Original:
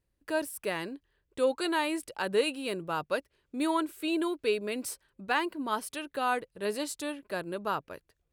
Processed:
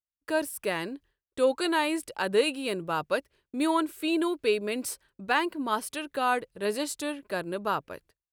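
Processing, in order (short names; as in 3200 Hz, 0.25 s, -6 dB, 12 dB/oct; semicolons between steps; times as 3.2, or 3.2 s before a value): expander -55 dBFS; gain +3 dB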